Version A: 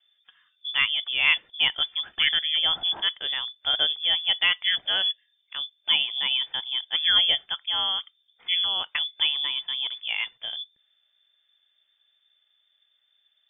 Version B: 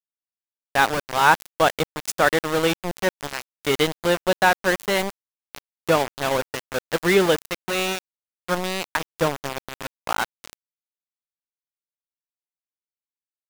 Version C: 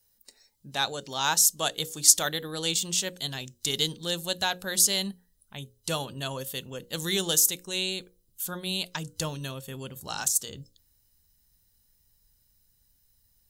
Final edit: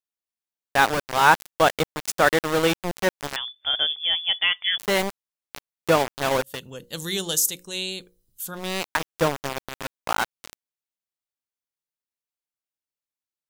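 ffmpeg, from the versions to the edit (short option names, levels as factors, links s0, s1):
-filter_complex "[1:a]asplit=3[s0][s1][s2];[s0]atrim=end=3.362[s3];[0:a]atrim=start=3.358:end=4.782[s4];[s1]atrim=start=4.778:end=6.66[s5];[2:a]atrim=start=6.42:end=8.77[s6];[s2]atrim=start=8.53[s7];[s3][s4]acrossfade=d=0.004:c1=hsin:c2=hsin[s8];[s8][s5]acrossfade=d=0.004:c1=hsin:c2=hsin[s9];[s9][s6]acrossfade=d=0.24:c1=tri:c2=tri[s10];[s10][s7]acrossfade=d=0.24:c1=tri:c2=tri"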